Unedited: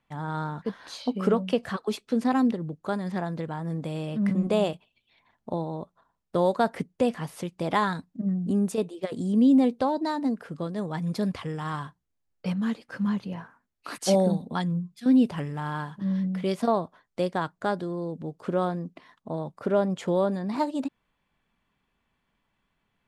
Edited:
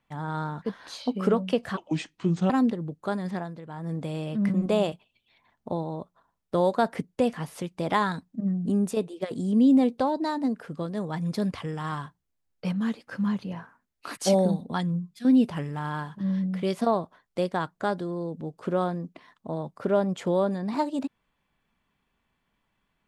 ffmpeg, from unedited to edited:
-filter_complex "[0:a]asplit=5[s0][s1][s2][s3][s4];[s0]atrim=end=1.774[s5];[s1]atrim=start=1.77:end=2.31,asetpts=PTS-STARTPTS,asetrate=32634,aresample=44100,atrim=end_sample=32181,asetpts=PTS-STARTPTS[s6];[s2]atrim=start=2.306:end=3.41,asetpts=PTS-STARTPTS,afade=t=out:st=0.784:d=0.32:silence=0.298538[s7];[s3]atrim=start=3.41:end=3.43,asetpts=PTS-STARTPTS,volume=0.299[s8];[s4]atrim=start=3.43,asetpts=PTS-STARTPTS,afade=t=in:d=0.32:silence=0.298538[s9];[s5][s6]acrossfade=d=0.004:c1=hsin:c2=hsin[s10];[s7][s8][s9]concat=n=3:v=0:a=1[s11];[s10][s11]acrossfade=d=0.004:c1=hsin:c2=hsin"

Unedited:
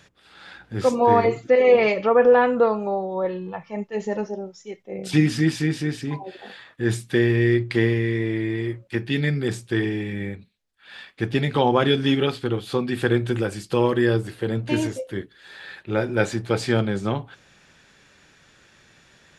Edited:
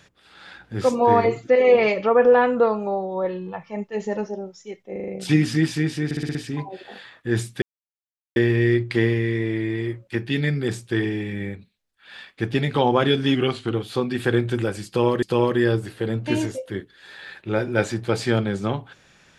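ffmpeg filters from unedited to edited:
-filter_complex "[0:a]asplit=14[s0][s1][s2][s3][s4][s5][s6][s7][s8][s9][s10][s11][s12][s13];[s0]atrim=end=4.962[s14];[s1]atrim=start=4.918:end=4.962[s15];[s2]atrim=start=4.918:end=4.962[s16];[s3]atrim=start=4.918:end=4.962[s17];[s4]atrim=start=4.918:end=5.952[s18];[s5]atrim=start=5.888:end=5.952[s19];[s6]atrim=start=5.888:end=5.952[s20];[s7]atrim=start=5.888:end=5.952[s21];[s8]atrim=start=5.888:end=5.952[s22];[s9]atrim=start=5.888:end=7.16,asetpts=PTS-STARTPTS,afade=t=out:st=1.268:d=0.004:c=hsin,apad=pad_dur=0.74[s23];[s10]atrim=start=7.16:end=12.154,asetpts=PTS-STARTPTS,afade=t=in:d=0.004:c=hsin[s24];[s11]atrim=start=12.15:end=12.49,asetpts=PTS-STARTPTS,asetrate=41013,aresample=44100[s25];[s12]atrim=start=12.486:end=14.002[s26];[s13]atrim=start=13.638[s27];[s14][s15]acrossfade=d=0.004:c1=hsin:c2=hsin[s28];[s28][s16]acrossfade=d=0.004:c1=hsin:c2=hsin[s29];[s29][s17]acrossfade=d=0.004:c1=hsin:c2=hsin[s30];[s30][s18]acrossfade=d=0.004:c1=hsin:c2=hsin[s31];[s31][s19]acrossfade=d=0.004:c1=hsin:c2=hsin[s32];[s32][s20]acrossfade=d=0.004:c1=hsin:c2=hsin[s33];[s33][s21]acrossfade=d=0.004:c1=hsin:c2=hsin[s34];[s34][s22]acrossfade=d=0.004:c1=hsin:c2=hsin[s35];[s23][s24]concat=n=2:v=0:a=1[s36];[s35][s36]acrossfade=d=0.004:c1=hsin:c2=hsin[s37];[s37][s25]acrossfade=d=0.004:c1=hsin:c2=hsin[s38];[s38][s26]acrossfade=d=0.004:c1=hsin:c2=hsin[s39];[s39][s27]acrossfade=d=0.004:c1=hsin:c2=hsin"

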